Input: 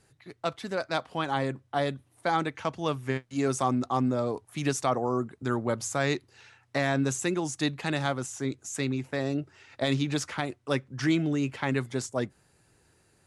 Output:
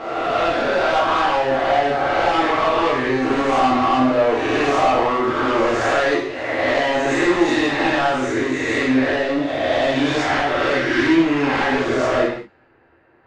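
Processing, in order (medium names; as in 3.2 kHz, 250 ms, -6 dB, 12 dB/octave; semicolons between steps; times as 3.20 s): reverse spectral sustain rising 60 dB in 1.21 s; level-controlled noise filter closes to 2 kHz, open at -23.5 dBFS; tone controls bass -13 dB, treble -13 dB; in parallel at -2.5 dB: compression, threshold -39 dBFS, peak gain reduction 18 dB; on the sum: waveshaping leveller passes 5; reverse; upward compressor, threshold -36 dBFS; reverse; distance through air 120 m; gated-style reverb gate 240 ms falling, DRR -4.5 dB; trim -8 dB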